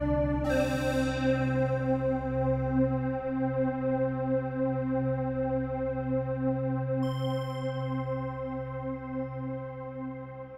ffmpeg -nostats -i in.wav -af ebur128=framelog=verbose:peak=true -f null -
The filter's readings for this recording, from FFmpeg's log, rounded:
Integrated loudness:
  I:         -30.4 LUFS
  Threshold: -40.5 LUFS
Loudness range:
  LRA:         4.8 LU
  Threshold: -50.4 LUFS
  LRA low:   -33.5 LUFS
  LRA high:  -28.6 LUFS
True peak:
  Peak:      -15.0 dBFS